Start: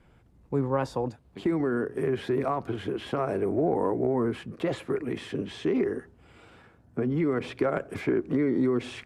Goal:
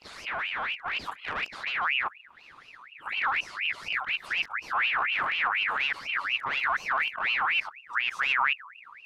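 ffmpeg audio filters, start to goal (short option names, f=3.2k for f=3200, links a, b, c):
-af "areverse,aeval=exprs='(tanh(22.4*val(0)+0.35)-tanh(0.35))/22.4':c=same,asubboost=boost=6.5:cutoff=200,aeval=exprs='val(0)*sin(2*PI*1900*n/s+1900*0.45/4.1*sin(2*PI*4.1*n/s))':c=same"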